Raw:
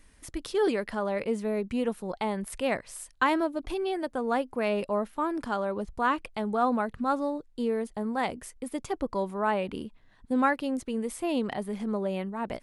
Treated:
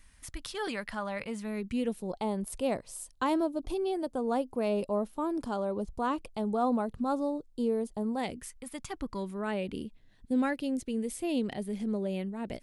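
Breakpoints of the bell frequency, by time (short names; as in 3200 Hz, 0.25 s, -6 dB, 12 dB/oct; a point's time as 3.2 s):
bell -13 dB 1.4 oct
1.37 s 390 Hz
2.15 s 1800 Hz
8.12 s 1800 Hz
8.63 s 360 Hz
9.61 s 1100 Hz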